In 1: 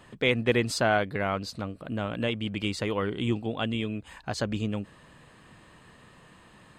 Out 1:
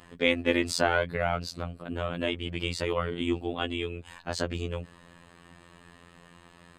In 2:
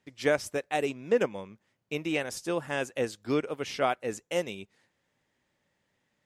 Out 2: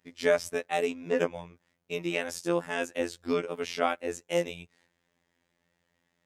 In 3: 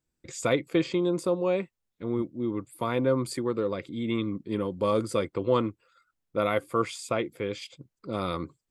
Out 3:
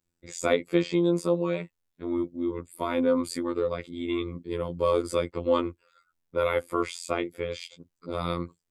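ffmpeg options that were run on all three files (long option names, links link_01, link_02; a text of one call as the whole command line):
ffmpeg -i in.wav -af "afftfilt=real='hypot(re,im)*cos(PI*b)':imag='0':win_size=2048:overlap=0.75,volume=3.5dB" out.wav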